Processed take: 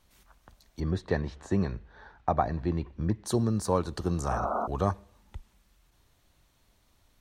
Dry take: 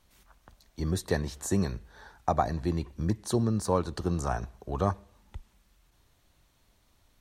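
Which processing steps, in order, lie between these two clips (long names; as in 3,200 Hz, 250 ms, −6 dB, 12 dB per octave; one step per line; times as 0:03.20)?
0:00.80–0:03.26: low-pass filter 3,000 Hz 12 dB per octave
0:04.34–0:04.64: healed spectral selection 200–1,500 Hz before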